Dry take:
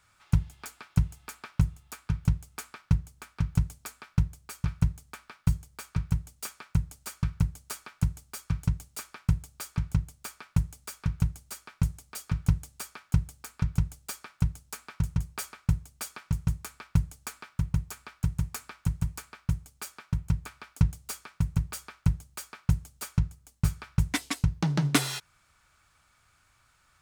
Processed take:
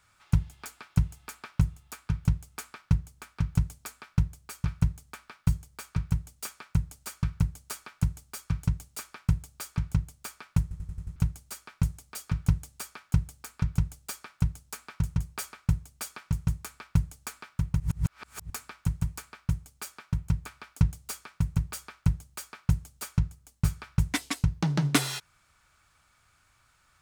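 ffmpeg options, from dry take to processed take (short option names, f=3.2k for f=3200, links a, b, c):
-filter_complex "[0:a]asplit=9[a][b][c][d][e][f][g][h][i];[a]atrim=end=10.712[j];[b]atrim=start=10.618:end=10.712[k];[c]atrim=start=10.618:end=10.712[l];[d]atrim=start=10.618:end=10.712[m];[e]atrim=start=10.618:end=10.712[n];[f]atrim=start=10.618:end=10.712[o];[g]atrim=start=11.158:end=17.802[p];[h]atrim=start=17.798:end=18.502,asetpts=PTS-STARTPTS,areverse[q];[i]atrim=start=18.498[r];[j][k]acrossfade=d=0.004:c1=hsin:c2=hsin[s];[s][l]acrossfade=d=0.004:c1=hsin:c2=hsin[t];[t][m]acrossfade=d=0.004:c1=hsin:c2=hsin[u];[u][n]acrossfade=d=0.004:c1=hsin:c2=hsin[v];[v][o]acrossfade=d=0.004:c1=hsin:c2=hsin[w];[w][p]acrossfade=d=0.004:c1=hsin:c2=hsin[x];[x][q]acrossfade=d=0.004:c1=hsin:c2=hsin[y];[y][r]acrossfade=d=0.004:c1=hsin:c2=hsin"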